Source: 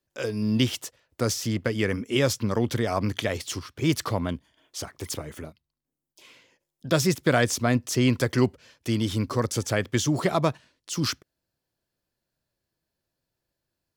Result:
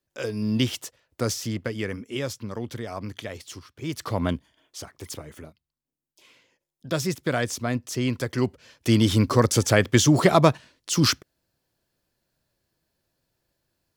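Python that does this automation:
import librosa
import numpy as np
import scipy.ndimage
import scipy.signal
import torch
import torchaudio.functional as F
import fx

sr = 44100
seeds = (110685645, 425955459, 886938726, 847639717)

y = fx.gain(x, sr, db=fx.line((1.26, -0.5), (2.35, -8.0), (3.93, -8.0), (4.27, 4.5), (4.81, -4.0), (8.34, -4.0), (8.93, 6.5)))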